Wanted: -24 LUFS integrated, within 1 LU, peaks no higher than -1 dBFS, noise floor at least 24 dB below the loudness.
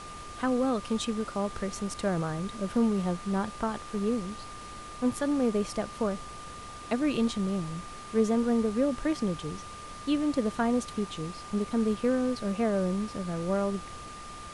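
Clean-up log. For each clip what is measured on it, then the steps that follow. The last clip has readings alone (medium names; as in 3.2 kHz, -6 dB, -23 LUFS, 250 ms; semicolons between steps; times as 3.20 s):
steady tone 1.2 kHz; tone level -43 dBFS; noise floor -43 dBFS; noise floor target -54 dBFS; loudness -30.0 LUFS; peak level -14.0 dBFS; loudness target -24.0 LUFS
-> band-stop 1.2 kHz, Q 30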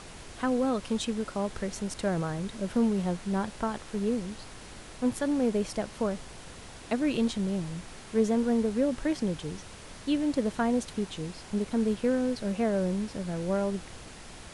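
steady tone not found; noise floor -46 dBFS; noise floor target -54 dBFS
-> noise print and reduce 8 dB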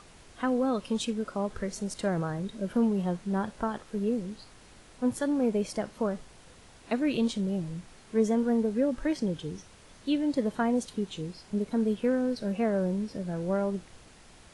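noise floor -54 dBFS; loudness -30.0 LUFS; peak level -14.5 dBFS; loudness target -24.0 LUFS
-> trim +6 dB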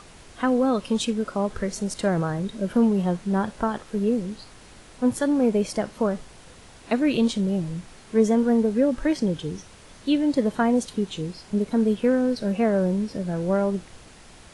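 loudness -24.0 LUFS; peak level -8.5 dBFS; noise floor -48 dBFS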